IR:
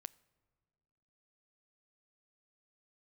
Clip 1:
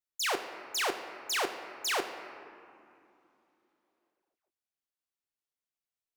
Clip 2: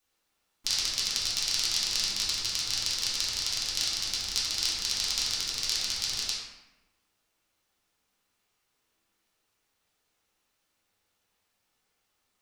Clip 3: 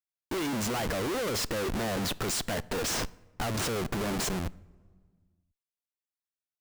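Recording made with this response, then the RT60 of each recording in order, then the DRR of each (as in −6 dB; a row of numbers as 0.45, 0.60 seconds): 3; 2.8, 1.0, 1.7 seconds; 6.0, −8.0, 21.0 decibels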